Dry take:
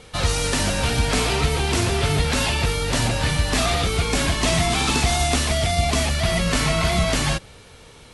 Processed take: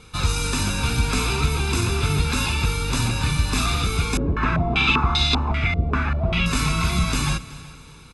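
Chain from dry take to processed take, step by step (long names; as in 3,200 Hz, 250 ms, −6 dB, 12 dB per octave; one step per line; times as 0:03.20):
comb filter 0.8 ms, depth 71%
echo machine with several playback heads 124 ms, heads second and third, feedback 42%, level −20 dB
0:04.17–0:06.46: low-pass on a step sequencer 5.1 Hz 470–4,000 Hz
level −4 dB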